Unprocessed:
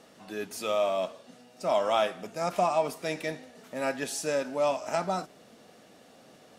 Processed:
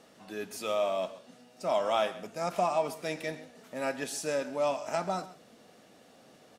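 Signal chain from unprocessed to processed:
single-tap delay 131 ms −17 dB
level −2.5 dB

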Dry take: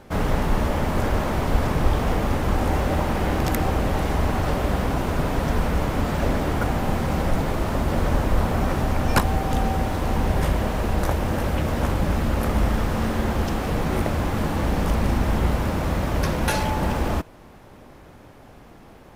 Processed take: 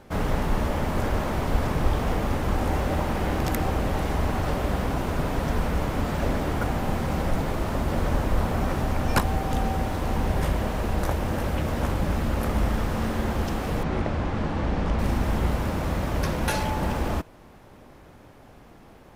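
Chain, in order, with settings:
0:13.83–0:14.99: high-frequency loss of the air 110 metres
level −3 dB

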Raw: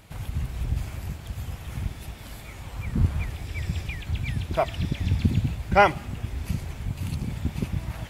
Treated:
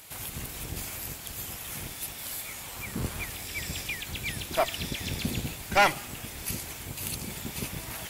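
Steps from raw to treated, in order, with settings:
sub-octave generator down 1 octave, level −2 dB
RIAA equalisation recording
tube saturation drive 16 dB, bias 0.45
level +2 dB

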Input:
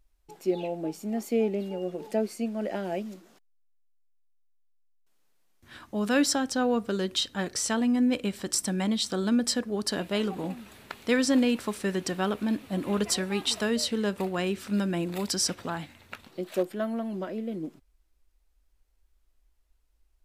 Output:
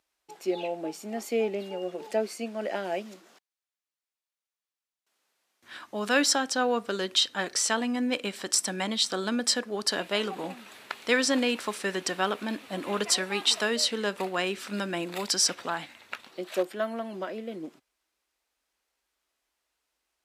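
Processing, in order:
meter weighting curve A
level +3.5 dB

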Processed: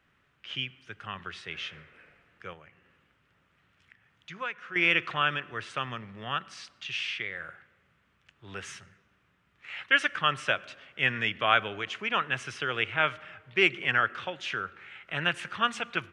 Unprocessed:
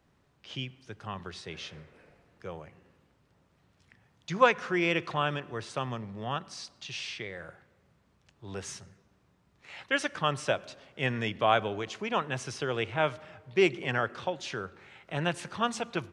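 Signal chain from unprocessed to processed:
flat-topped bell 2,000 Hz +11.5 dB
0:02.53–0:04.76: downward compressor 1.5 to 1, threshold −54 dBFS, peak gain reduction 15 dB
level −4.5 dB

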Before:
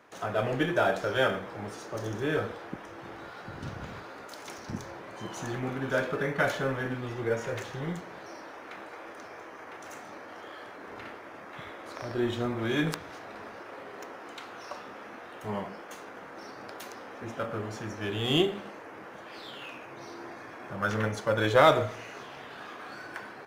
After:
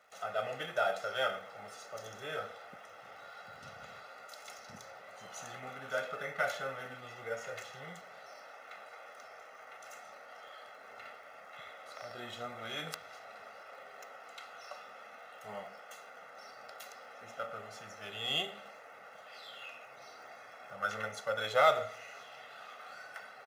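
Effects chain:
high-pass filter 780 Hz 6 dB per octave
comb filter 1.5 ms, depth 80%
surface crackle 140 per second −51 dBFS
level −6.5 dB

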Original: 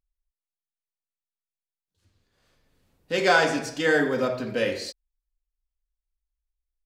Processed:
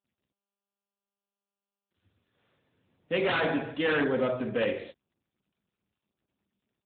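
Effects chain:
wave folding −18.5 dBFS
level −1 dB
AMR narrowband 10.2 kbit/s 8,000 Hz

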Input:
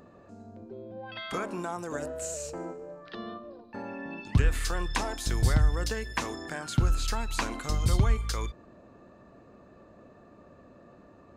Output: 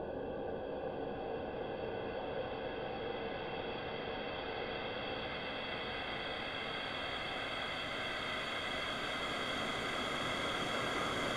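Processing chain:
random phases in short frames
extreme stretch with random phases 35×, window 0.50 s, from 0:00.95

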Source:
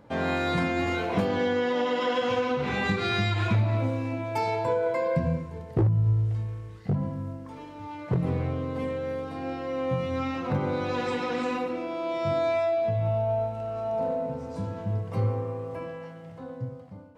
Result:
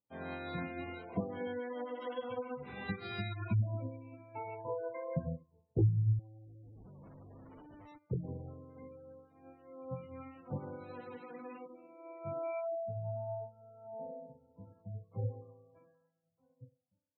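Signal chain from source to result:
0:06.19–0:07.98: comparator with hysteresis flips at −45.5 dBFS
gate on every frequency bin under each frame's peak −20 dB strong
expander for the loud parts 2.5 to 1, over −46 dBFS
level −4 dB

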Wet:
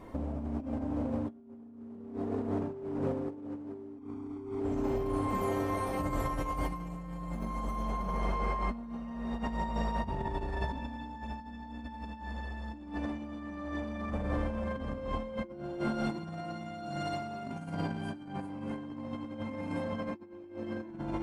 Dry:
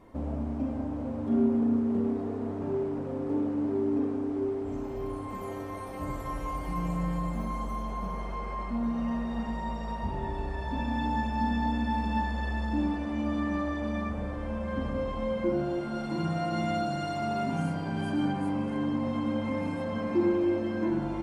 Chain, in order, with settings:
0:03.98–0:04.60: comb filter 0.9 ms, depth 80%
compressor whose output falls as the input rises −35 dBFS, ratio −0.5

